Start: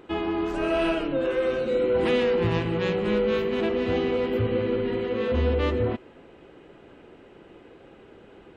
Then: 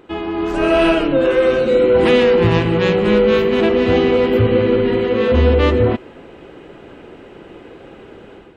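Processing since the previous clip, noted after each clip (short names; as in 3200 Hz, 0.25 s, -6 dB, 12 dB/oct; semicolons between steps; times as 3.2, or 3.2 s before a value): AGC gain up to 8 dB; gain +3 dB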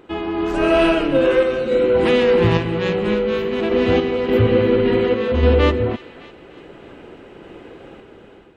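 thin delay 0.302 s, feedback 50%, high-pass 1500 Hz, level -13 dB; random-step tremolo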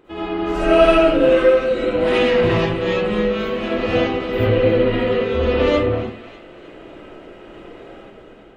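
digital reverb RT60 0.48 s, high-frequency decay 0.5×, pre-delay 30 ms, DRR -7.5 dB; gain -6.5 dB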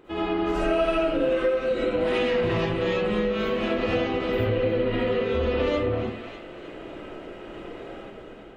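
compressor 4:1, threshold -22 dBFS, peak gain reduction 12 dB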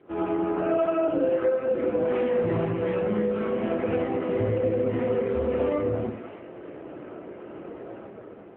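LPF 1600 Hz 12 dB/oct; AMR-NB 7.95 kbps 8000 Hz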